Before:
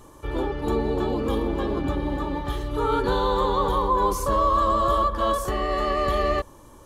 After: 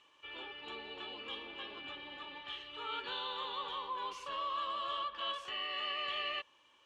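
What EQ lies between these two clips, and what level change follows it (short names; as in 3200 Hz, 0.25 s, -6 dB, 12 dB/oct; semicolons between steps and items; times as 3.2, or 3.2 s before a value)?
band-pass 2800 Hz, Q 5.9; air absorption 64 m; +6.0 dB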